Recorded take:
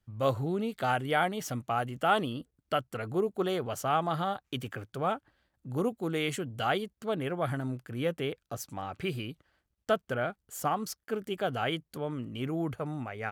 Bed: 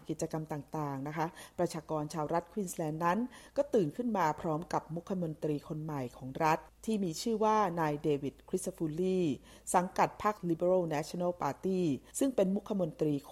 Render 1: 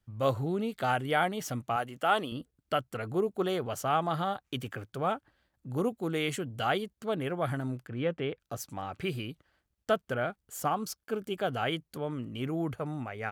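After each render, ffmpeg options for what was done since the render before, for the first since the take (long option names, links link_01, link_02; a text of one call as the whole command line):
ffmpeg -i in.wav -filter_complex "[0:a]asettb=1/sr,asplit=3[link_01][link_02][link_03];[link_01]atrim=end=1.764[link_04];[link_02]atrim=start=1.76:end=2.32,asetpts=PTS-STARTPTS,afade=type=in:duration=0.004:curve=qsin,afade=type=out:start_time=0.556:duration=0.004:curve=qsin,highpass=frequency=330:poles=1[link_05];[link_03]atrim=start=2.316[link_06];[link_04][link_05]acrossfade=duration=0.004:curve1=hsin:curve2=qsin[link_07];[link_07][link_06]acrossfade=duration=0.004:curve1=qsin:curve2=hsin,asettb=1/sr,asplit=3[link_08][link_09][link_10];[link_08]atrim=end=7.874[link_11];[link_09]atrim=start=7.87:end=8.4,asetpts=PTS-STARTPTS,afade=type=in:duration=0.004:curve=qsin,afade=type=out:start_time=0.526:duration=0.004:curve=qsin,lowpass=3200[link_12];[link_10]atrim=start=8.396[link_13];[link_11][link_12]acrossfade=duration=0.004:curve1=hsin:curve2=qsin[link_14];[link_14][link_13]acrossfade=duration=0.004:curve1=qsin:curve2=hsin,asettb=1/sr,asplit=3[link_15][link_16][link_17];[link_15]atrim=end=10.704[link_18];[link_16]atrim=start=10.7:end=11.38,asetpts=PTS-STARTPTS,afade=type=in:duration=0.004:curve=qsin,afade=type=out:start_time=0.676:duration=0.004:curve=qsin,bandreject=frequency=1900:width=5.8[link_19];[link_17]atrim=start=11.376[link_20];[link_18][link_19]acrossfade=duration=0.004:curve1=hsin:curve2=qsin[link_21];[link_21][link_20]acrossfade=duration=0.004:curve1=qsin:curve2=hsin" out.wav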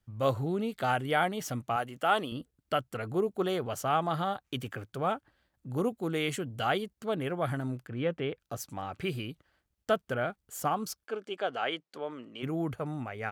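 ffmpeg -i in.wav -filter_complex "[0:a]asplit=3[link_01][link_02][link_03];[link_01]afade=type=out:start_time=11.06:duration=0.02[link_04];[link_02]highpass=380,lowpass=5500,afade=type=in:start_time=11.06:duration=0.02,afade=type=out:start_time=12.42:duration=0.02[link_05];[link_03]afade=type=in:start_time=12.42:duration=0.02[link_06];[link_04][link_05][link_06]amix=inputs=3:normalize=0" out.wav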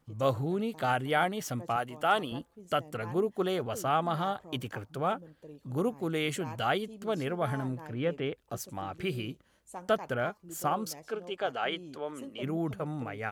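ffmpeg -i in.wav -i bed.wav -filter_complex "[1:a]volume=-15dB[link_01];[0:a][link_01]amix=inputs=2:normalize=0" out.wav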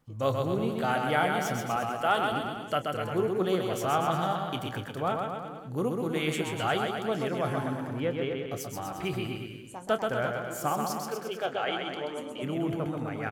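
ffmpeg -i in.wav -filter_complex "[0:a]asplit=2[link_01][link_02];[link_02]adelay=27,volume=-13dB[link_03];[link_01][link_03]amix=inputs=2:normalize=0,asplit=2[link_04][link_05];[link_05]aecho=0:1:130|247|352.3|447.1|532.4:0.631|0.398|0.251|0.158|0.1[link_06];[link_04][link_06]amix=inputs=2:normalize=0" out.wav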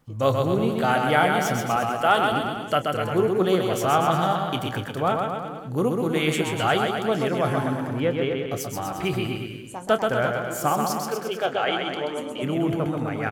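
ffmpeg -i in.wav -af "volume=6.5dB" out.wav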